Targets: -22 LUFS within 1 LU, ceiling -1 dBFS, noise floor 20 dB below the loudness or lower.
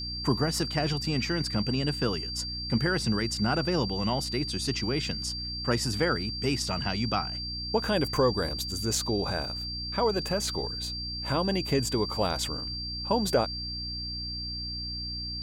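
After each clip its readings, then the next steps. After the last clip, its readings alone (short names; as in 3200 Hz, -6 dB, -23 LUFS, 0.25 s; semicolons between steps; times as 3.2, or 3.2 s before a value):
hum 60 Hz; harmonics up to 300 Hz; hum level -37 dBFS; steady tone 4700 Hz; tone level -34 dBFS; loudness -29.0 LUFS; peak -12.5 dBFS; loudness target -22.0 LUFS
-> notches 60/120/180/240/300 Hz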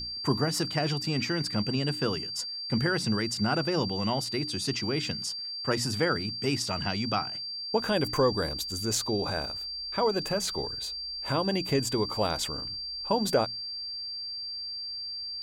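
hum none; steady tone 4700 Hz; tone level -34 dBFS
-> notch 4700 Hz, Q 30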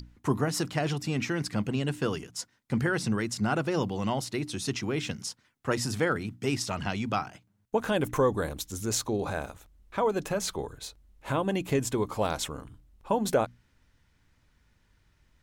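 steady tone none; loudness -30.5 LUFS; peak -13.5 dBFS; loudness target -22.0 LUFS
-> gain +8.5 dB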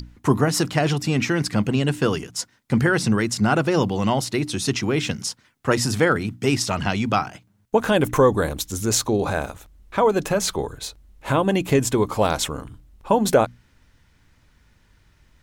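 loudness -22.0 LUFS; peak -5.0 dBFS; noise floor -60 dBFS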